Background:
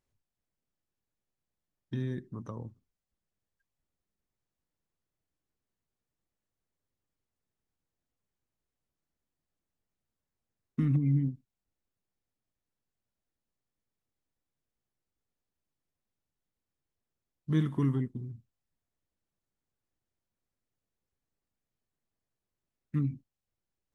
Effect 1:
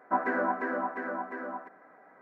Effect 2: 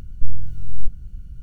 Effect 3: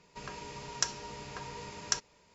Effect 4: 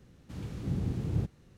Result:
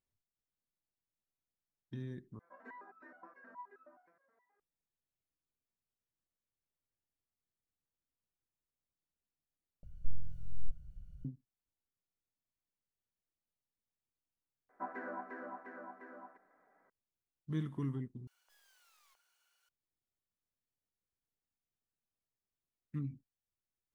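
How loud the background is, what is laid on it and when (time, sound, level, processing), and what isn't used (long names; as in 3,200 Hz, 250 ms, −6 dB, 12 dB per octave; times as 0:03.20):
background −9.5 dB
0:02.39: overwrite with 1 −5.5 dB + step-sequenced resonator 9.5 Hz 170–1,300 Hz
0:09.83: overwrite with 2 −16 dB + drawn EQ curve 110 Hz 0 dB, 170 Hz +4 dB, 250 Hz −16 dB, 380 Hz −9 dB, 570 Hz +10 dB, 850 Hz 0 dB
0:14.69: mix in 1 −15 dB
0:18.27: overwrite with 2 −5.5 dB + inverse Chebyshev high-pass filter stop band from 180 Hz, stop band 70 dB
not used: 3, 4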